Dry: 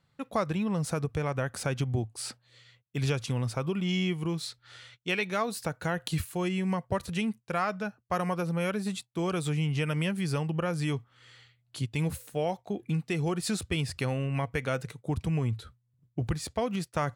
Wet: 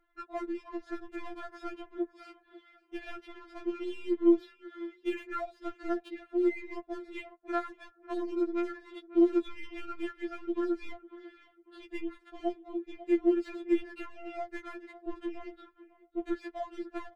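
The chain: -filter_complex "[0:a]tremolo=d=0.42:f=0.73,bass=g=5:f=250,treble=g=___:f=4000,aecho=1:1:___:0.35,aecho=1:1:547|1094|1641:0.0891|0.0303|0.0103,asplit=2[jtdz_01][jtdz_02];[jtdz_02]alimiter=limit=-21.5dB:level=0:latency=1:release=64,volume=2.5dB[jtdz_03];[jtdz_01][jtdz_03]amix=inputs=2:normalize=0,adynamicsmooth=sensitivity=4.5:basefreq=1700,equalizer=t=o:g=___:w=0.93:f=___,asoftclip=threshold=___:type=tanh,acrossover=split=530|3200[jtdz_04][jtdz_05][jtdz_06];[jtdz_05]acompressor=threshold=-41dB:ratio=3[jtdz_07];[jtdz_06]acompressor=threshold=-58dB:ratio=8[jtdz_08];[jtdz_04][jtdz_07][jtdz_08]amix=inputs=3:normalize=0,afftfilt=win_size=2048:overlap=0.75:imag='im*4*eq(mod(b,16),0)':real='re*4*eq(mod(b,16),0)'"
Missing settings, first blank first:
-14, 6.4, -2.5, 250, -12.5dB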